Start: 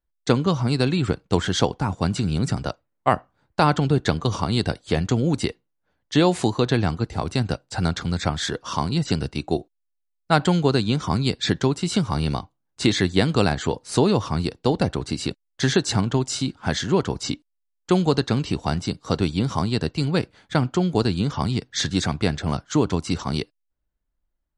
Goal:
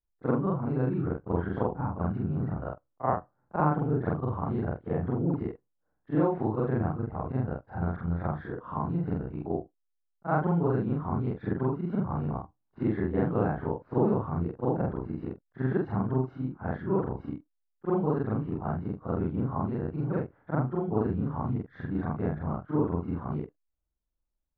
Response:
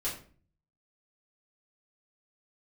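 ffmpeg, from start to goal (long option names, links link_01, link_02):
-af "afftfilt=real='re':imag='-im':win_size=4096:overlap=0.75,lowpass=frequency=1400:width=0.5412,lowpass=frequency=1400:width=1.3066,volume=-2.5dB"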